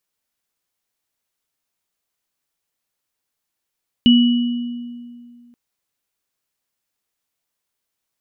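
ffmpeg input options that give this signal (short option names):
-f lavfi -i "aevalsrc='0.447*pow(10,-3*t/2.24)*sin(2*PI*240*t)+0.188*pow(10,-3*t/1.25)*sin(2*PI*2940*t)':d=1.48:s=44100"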